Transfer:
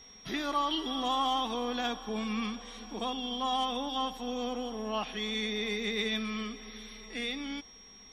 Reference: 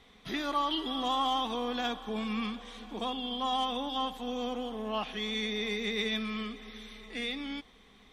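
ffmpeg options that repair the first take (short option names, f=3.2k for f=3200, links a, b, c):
-af "bandreject=f=5.6k:w=30"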